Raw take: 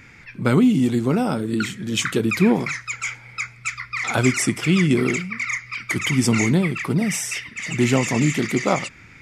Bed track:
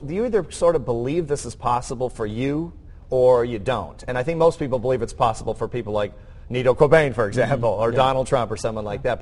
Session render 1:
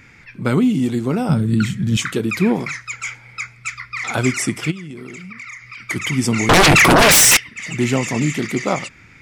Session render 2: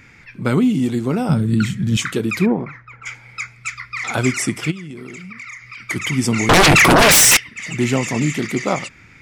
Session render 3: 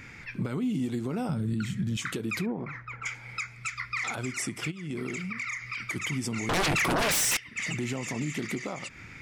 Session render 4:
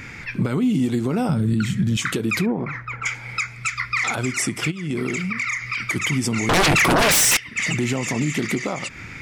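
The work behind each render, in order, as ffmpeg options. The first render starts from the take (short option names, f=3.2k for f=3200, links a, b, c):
-filter_complex "[0:a]asettb=1/sr,asplit=3[a][b][c];[a]atrim=end=1.294[d];[b]atrim=start=1.29:end=1.97,asetpts=PTS-STARTPTS,afade=t=in:d=0.004:c=qsin,afade=t=out:st=0.676:d=0.004:c=qsin,lowshelf=f=230:t=q:w=1.5:g=11[e];[c]atrim=start=1.966[f];[d][e]acrossfade=d=0.004:c1=hsin:c2=qsin[g];[g][f]acrossfade=d=0.004:c1=qsin:c2=hsin,asplit=3[h][i][j];[h]afade=t=out:st=4.7:d=0.02[k];[i]acompressor=threshold=-31dB:ratio=6:attack=3.2:release=140:knee=1:detection=peak,afade=t=in:st=4.7:d=0.02,afade=t=out:st=5.82:d=0.02[l];[j]afade=t=in:st=5.82:d=0.02[m];[k][l][m]amix=inputs=3:normalize=0,asettb=1/sr,asplit=3[n][o][p];[n]atrim=end=6.494[q];[o]atrim=start=6.49:end=7.37,asetpts=PTS-STARTPTS,afade=t=in:d=0.004:c=qsin,afade=t=out:st=0.876:d=0.004:c=qsin,aeval=exprs='0.447*sin(PI/2*8.91*val(0)/0.447)':c=same[r];[p]atrim=start=7.366[s];[q][r]acrossfade=d=0.004:c1=hsin:c2=qsin[t];[t][s]acrossfade=d=0.004:c1=qsin:c2=hsin"
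-filter_complex "[0:a]asplit=3[a][b][c];[a]afade=t=out:st=2.45:d=0.02[d];[b]lowpass=1.1k,afade=t=in:st=2.45:d=0.02,afade=t=out:st=3.05:d=0.02[e];[c]afade=t=in:st=3.05:d=0.02[f];[d][e][f]amix=inputs=3:normalize=0"
-af "acompressor=threshold=-25dB:ratio=2.5,alimiter=limit=-22.5dB:level=0:latency=1:release=256"
-af "volume=9.5dB"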